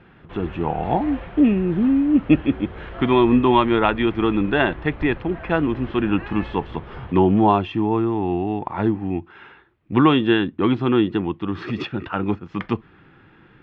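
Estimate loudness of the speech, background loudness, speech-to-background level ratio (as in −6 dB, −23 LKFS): −20.5 LKFS, −37.5 LKFS, 17.0 dB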